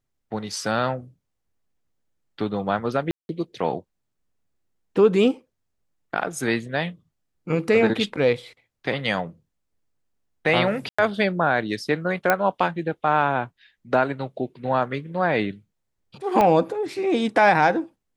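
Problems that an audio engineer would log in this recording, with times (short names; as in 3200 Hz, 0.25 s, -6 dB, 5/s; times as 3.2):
3.11–3.29 gap 0.181 s
10.89–10.98 gap 95 ms
12.3 pop -5 dBFS
16.41 pop -8 dBFS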